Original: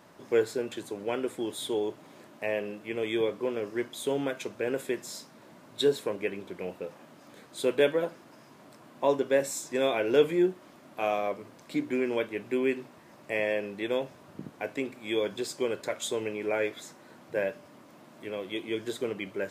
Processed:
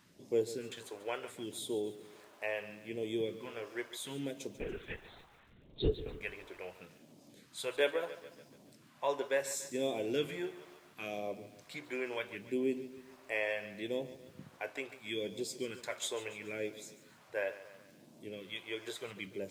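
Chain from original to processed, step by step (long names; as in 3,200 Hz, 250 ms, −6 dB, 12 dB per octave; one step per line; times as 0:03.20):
all-pass phaser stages 2, 0.73 Hz, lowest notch 170–1,500 Hz
0:04.58–0:06.21: linear-prediction vocoder at 8 kHz whisper
feedback echo at a low word length 143 ms, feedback 55%, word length 9 bits, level −14.5 dB
level −4.5 dB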